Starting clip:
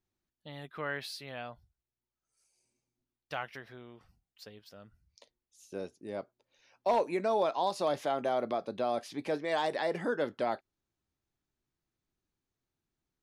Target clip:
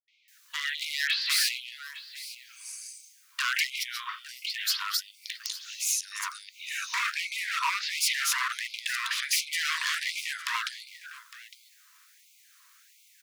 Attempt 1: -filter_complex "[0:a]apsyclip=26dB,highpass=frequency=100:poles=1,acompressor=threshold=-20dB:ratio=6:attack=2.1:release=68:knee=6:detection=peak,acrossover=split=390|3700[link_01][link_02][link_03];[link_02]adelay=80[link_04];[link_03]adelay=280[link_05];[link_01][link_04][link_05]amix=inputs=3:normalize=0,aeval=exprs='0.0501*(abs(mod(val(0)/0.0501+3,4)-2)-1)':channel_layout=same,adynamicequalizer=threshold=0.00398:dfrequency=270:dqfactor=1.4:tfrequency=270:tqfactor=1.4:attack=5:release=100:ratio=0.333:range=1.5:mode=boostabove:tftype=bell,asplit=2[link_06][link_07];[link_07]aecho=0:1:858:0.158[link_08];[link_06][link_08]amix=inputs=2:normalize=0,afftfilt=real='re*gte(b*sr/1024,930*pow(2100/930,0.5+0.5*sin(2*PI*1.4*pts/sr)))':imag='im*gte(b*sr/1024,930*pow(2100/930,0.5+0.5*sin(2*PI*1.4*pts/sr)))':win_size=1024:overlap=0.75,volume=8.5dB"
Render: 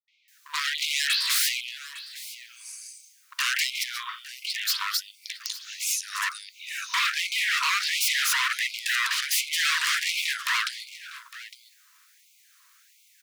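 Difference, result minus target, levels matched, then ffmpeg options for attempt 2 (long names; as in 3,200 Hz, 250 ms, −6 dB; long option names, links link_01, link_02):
downward compressor: peak gain reduction −5.5 dB
-filter_complex "[0:a]apsyclip=26dB,highpass=frequency=100:poles=1,acompressor=threshold=-26.5dB:ratio=6:attack=2.1:release=68:knee=6:detection=peak,acrossover=split=390|3700[link_01][link_02][link_03];[link_02]adelay=80[link_04];[link_03]adelay=280[link_05];[link_01][link_04][link_05]amix=inputs=3:normalize=0,aeval=exprs='0.0501*(abs(mod(val(0)/0.0501+3,4)-2)-1)':channel_layout=same,adynamicequalizer=threshold=0.00398:dfrequency=270:dqfactor=1.4:tfrequency=270:tqfactor=1.4:attack=5:release=100:ratio=0.333:range=1.5:mode=boostabove:tftype=bell,asplit=2[link_06][link_07];[link_07]aecho=0:1:858:0.158[link_08];[link_06][link_08]amix=inputs=2:normalize=0,afftfilt=real='re*gte(b*sr/1024,930*pow(2100/930,0.5+0.5*sin(2*PI*1.4*pts/sr)))':imag='im*gte(b*sr/1024,930*pow(2100/930,0.5+0.5*sin(2*PI*1.4*pts/sr)))':win_size=1024:overlap=0.75,volume=8.5dB"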